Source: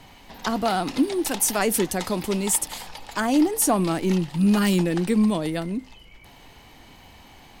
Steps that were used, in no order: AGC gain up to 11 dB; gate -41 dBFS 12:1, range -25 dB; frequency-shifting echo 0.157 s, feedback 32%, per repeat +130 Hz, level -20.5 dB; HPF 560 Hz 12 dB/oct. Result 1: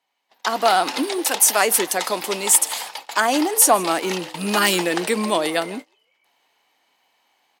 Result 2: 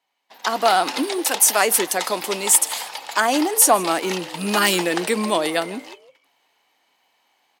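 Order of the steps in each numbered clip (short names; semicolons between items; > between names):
frequency-shifting echo > HPF > gate > AGC; gate > frequency-shifting echo > HPF > AGC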